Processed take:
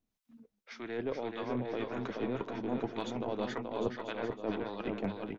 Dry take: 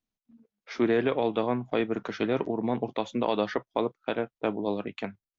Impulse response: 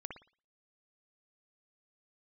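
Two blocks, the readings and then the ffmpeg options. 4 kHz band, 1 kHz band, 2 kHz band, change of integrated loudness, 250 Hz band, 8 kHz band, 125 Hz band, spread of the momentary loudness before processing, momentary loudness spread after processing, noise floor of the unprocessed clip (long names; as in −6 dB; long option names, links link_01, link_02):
−7.0 dB, −8.0 dB, −7.5 dB, −8.0 dB, −7.0 dB, can't be measured, −5.0 dB, 7 LU, 2 LU, below −85 dBFS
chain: -filter_complex "[0:a]areverse,acompressor=threshold=-36dB:ratio=12,areverse,aeval=exprs='0.0447*(cos(1*acos(clip(val(0)/0.0447,-1,1)))-cos(1*PI/2))+0.00631*(cos(2*acos(clip(val(0)/0.0447,-1,1)))-cos(2*PI/2))':channel_layout=same,acrossover=split=840[link_01][link_02];[link_01]aeval=exprs='val(0)*(1-0.7/2+0.7/2*cos(2*PI*1.8*n/s))':channel_layout=same[link_03];[link_02]aeval=exprs='val(0)*(1-0.7/2-0.7/2*cos(2*PI*1.8*n/s))':channel_layout=same[link_04];[link_03][link_04]amix=inputs=2:normalize=0,aecho=1:1:430|752.5|994.4|1176|1312:0.631|0.398|0.251|0.158|0.1,volume=6.5dB"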